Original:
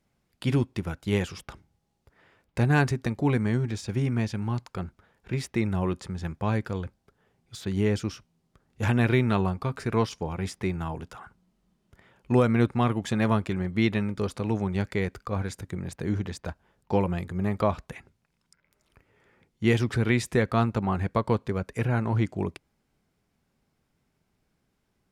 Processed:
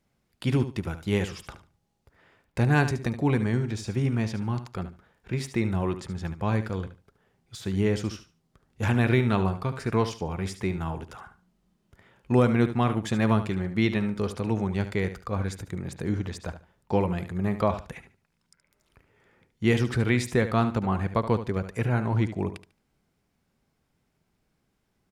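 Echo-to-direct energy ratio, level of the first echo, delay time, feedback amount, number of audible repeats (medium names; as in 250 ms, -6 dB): -11.5 dB, -11.5 dB, 73 ms, 20%, 2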